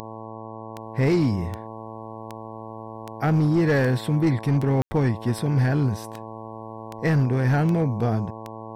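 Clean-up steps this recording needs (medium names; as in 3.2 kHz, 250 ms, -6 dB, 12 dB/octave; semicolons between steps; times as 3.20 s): clip repair -14.5 dBFS; de-click; de-hum 111 Hz, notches 10; room tone fill 4.82–4.91 s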